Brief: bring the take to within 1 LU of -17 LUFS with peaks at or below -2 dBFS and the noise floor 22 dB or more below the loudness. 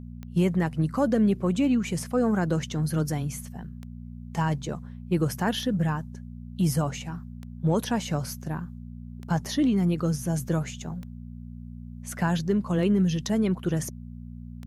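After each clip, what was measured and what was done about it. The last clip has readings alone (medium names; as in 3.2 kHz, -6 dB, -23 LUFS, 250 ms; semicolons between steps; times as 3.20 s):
clicks found 9; hum 60 Hz; highest harmonic 240 Hz; hum level -37 dBFS; loudness -27.0 LUFS; peak level -12.5 dBFS; loudness target -17.0 LUFS
-> de-click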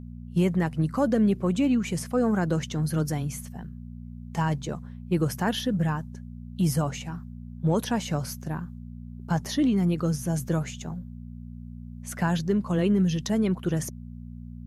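clicks found 0; hum 60 Hz; highest harmonic 240 Hz; hum level -37 dBFS
-> de-hum 60 Hz, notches 4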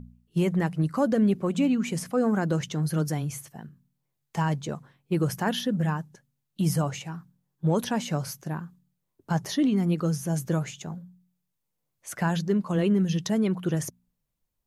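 hum not found; loudness -27.0 LUFS; peak level -12.5 dBFS; loudness target -17.0 LUFS
-> trim +10 dB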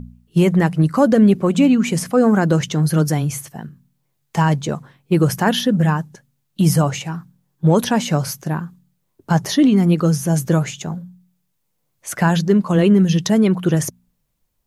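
loudness -17.0 LUFS; peak level -2.5 dBFS; noise floor -70 dBFS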